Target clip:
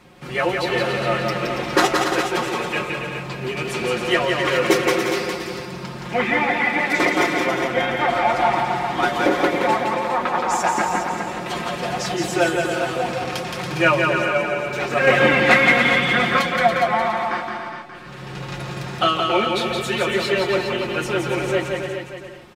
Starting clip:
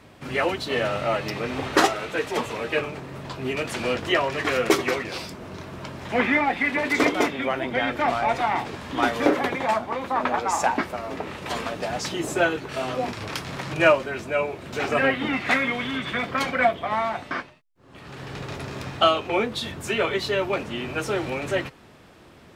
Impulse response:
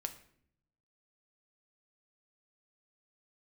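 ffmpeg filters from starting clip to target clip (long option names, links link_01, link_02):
-filter_complex "[0:a]bandreject=frequency=620:width=12,asplit=2[link_01][link_02];[link_02]aecho=0:1:170|280.5|352.3|399|429.4:0.631|0.398|0.251|0.158|0.1[link_03];[link_01][link_03]amix=inputs=2:normalize=0,asettb=1/sr,asplit=3[link_04][link_05][link_06];[link_04]atrim=end=15.074[link_07];[link_05]atrim=start=15.07:end=16.41,asetpts=PTS-STARTPTS,afade=type=in:duration=0.004:curve=qsin,afade=type=out:start_time=1.336:duration=0.004:curve=qsin,acontrast=37[link_08];[link_06]atrim=start=16.406[link_09];[link_07][link_08]acrossfade=duration=0.004:curve1=hsin:curve2=qsin[link_10];[link_10][link_09]acrossfade=duration=0.004:curve1=qsin:curve2=hsin,aecho=1:1:5.6:0.65,asplit=2[link_11][link_12];[link_12]aecho=0:1:412:0.355[link_13];[link_11][link_13]amix=inputs=2:normalize=0"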